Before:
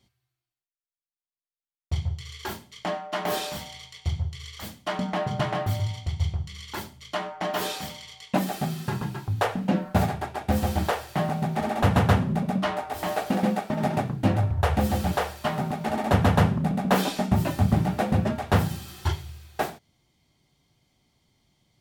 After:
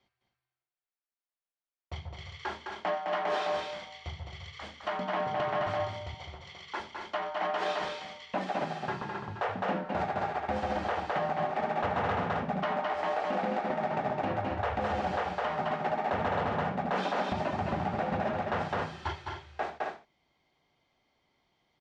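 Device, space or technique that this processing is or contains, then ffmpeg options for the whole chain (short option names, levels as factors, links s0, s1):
DJ mixer with the lows and highs turned down: -filter_complex "[0:a]asettb=1/sr,asplit=3[s0][s1][s2];[s0]atrim=end=6.144[s3];[s1]atrim=start=6.14:end=6.8,asetpts=PTS-STARTPTS,afade=t=in:d=0.004:c=qsin,afade=t=out:st=0.656:d=0.004:c=qsin,highpass=200[s4];[s2]atrim=start=6.796[s5];[s3][s4]acrossfade=d=0.004:c1=hsin:c2=qsin[s6];[s6][s5]acrossfade=d=0.004:c1=qsin:c2=hsin,lowpass=f=6300:w=0.5412,lowpass=f=6300:w=1.3066,acrossover=split=400 2700:gain=0.224 1 0.251[s7][s8][s9];[s7][s8][s9]amix=inputs=3:normalize=0,equalizer=f=110:t=o:w=0.43:g=-4.5,aecho=1:1:209.9|265.3:0.562|0.316,alimiter=limit=0.0891:level=0:latency=1:release=63"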